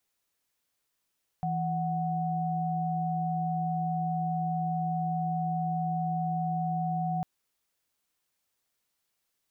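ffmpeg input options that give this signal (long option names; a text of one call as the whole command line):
ffmpeg -f lavfi -i "aevalsrc='0.0316*(sin(2*PI*164.81*t)+sin(2*PI*739.99*t))':duration=5.8:sample_rate=44100" out.wav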